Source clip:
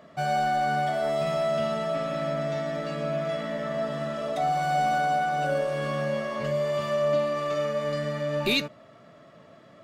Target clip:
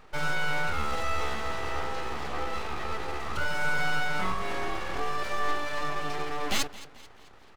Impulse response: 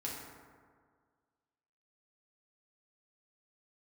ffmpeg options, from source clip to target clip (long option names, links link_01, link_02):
-filter_complex "[0:a]atempo=1.3,asplit=2[link_01][link_02];[link_02]aecho=0:1:219|438|657|876:0.126|0.0592|0.0278|0.0131[link_03];[link_01][link_03]amix=inputs=2:normalize=0,aeval=exprs='abs(val(0))':channel_layout=same"